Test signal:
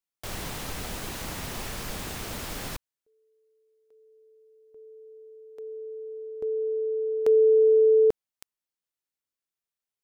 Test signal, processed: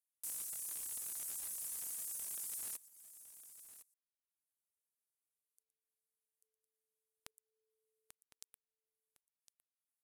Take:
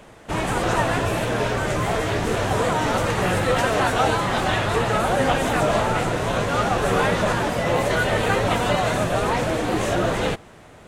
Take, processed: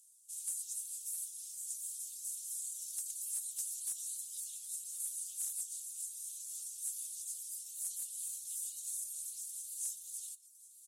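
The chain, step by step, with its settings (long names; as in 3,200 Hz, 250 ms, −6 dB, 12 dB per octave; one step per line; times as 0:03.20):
inverse Chebyshev high-pass filter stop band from 2,000 Hz, stop band 80 dB
single-tap delay 117 ms −11.5 dB
hard clipping −36.5 dBFS
high-frequency loss of the air 64 metres
single-tap delay 1,058 ms −13.5 dB
reverb reduction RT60 0.74 s
level +18 dB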